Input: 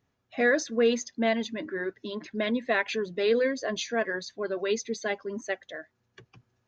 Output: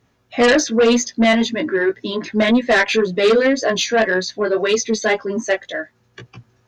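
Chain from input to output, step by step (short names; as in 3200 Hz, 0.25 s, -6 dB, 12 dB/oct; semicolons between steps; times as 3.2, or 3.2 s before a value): chorus 1.9 Hz, delay 16 ms, depth 2.9 ms; added harmonics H 5 -8 dB, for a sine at -14 dBFS; gain +7.5 dB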